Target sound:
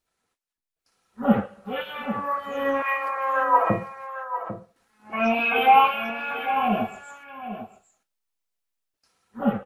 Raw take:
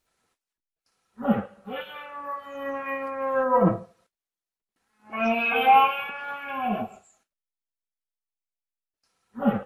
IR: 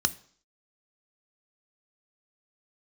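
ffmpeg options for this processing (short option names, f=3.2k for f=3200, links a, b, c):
-filter_complex "[0:a]asettb=1/sr,asplit=3[a][b][c];[a]atrim=end=2.824[d];[b]atrim=start=2.82:end=3.7,asetpts=PTS-STARTPTS,afade=t=in:d=0.004:c=qsin,afade=t=out:st=0.876:d=0.004:c=qsin,highpass=f=720:w=0.5412,highpass=f=720:w=1.3066[e];[c]atrim=start=3.696[f];[d][e]acrossfade=d=0.004:c1=hsin:c2=qsin[g];[g][f]acrossfade=d=0.004:c1=qsin:c2=hsin,dynaudnorm=f=440:g=3:m=12dB,flanger=delay=0.2:depth=4.1:regen=-87:speed=2:shape=sinusoidal,aecho=1:1:798:0.282"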